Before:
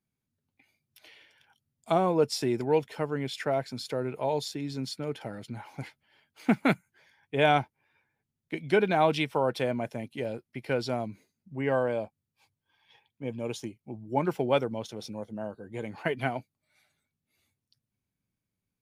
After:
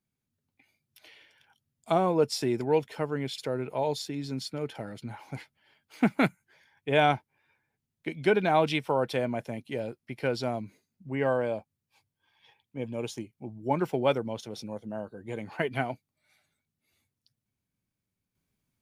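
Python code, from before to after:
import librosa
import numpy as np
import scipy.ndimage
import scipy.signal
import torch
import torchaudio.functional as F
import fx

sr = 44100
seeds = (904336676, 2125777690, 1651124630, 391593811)

y = fx.edit(x, sr, fx.cut(start_s=3.38, length_s=0.46), tone=tone)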